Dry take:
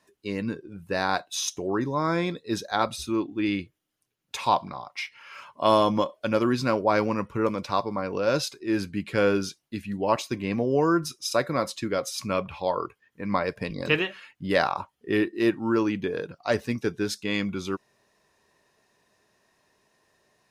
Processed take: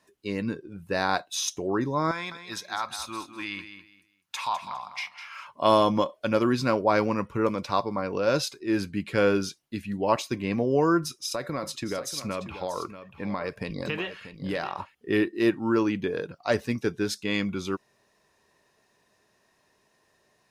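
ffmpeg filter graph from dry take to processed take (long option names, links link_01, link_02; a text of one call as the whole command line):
ffmpeg -i in.wav -filter_complex "[0:a]asettb=1/sr,asplit=3[link_01][link_02][link_03];[link_01]atrim=end=2.114[link_04];[link_02]atrim=start=2.11:end=5.47,asetpts=PTS-STARTPTS,afade=type=in:duration=0.004:curve=qsin,afade=type=out:start_time=3.356:duration=0.004:curve=qsin,lowshelf=frequency=670:width_type=q:width=1.5:gain=-12,acompressor=threshold=-29dB:ratio=2:attack=3.2:release=140:knee=1:detection=peak,aecho=1:1:203|406|609:0.299|0.0746|0.0187,atrim=end_sample=148176[link_05];[link_03]atrim=start=5.466[link_06];[link_04][link_05]acrossfade=duration=0.004:curve1=hsin:curve2=qsin[link_07];[link_07][link_06]acrossfade=duration=0.004:curve1=qsin:curve2=hsin,asettb=1/sr,asplit=3[link_08][link_09][link_10];[link_08]atrim=end=10.994[link_11];[link_09]atrim=start=10.99:end=14.95,asetpts=PTS-STARTPTS,afade=type=in:duration=0.004:curve=qsin,afade=type=out:start_time=3.956:duration=0.004:curve=qsin,acompressor=threshold=-26dB:ratio=6:attack=3.2:release=140:knee=1:detection=peak,aecho=1:1:636:0.251,atrim=end_sample=174636[link_12];[link_10]atrim=start=14.946[link_13];[link_11][link_12]acrossfade=duration=0.004:curve1=hsin:curve2=qsin[link_14];[link_14][link_13]acrossfade=duration=0.004:curve1=qsin:curve2=hsin" out.wav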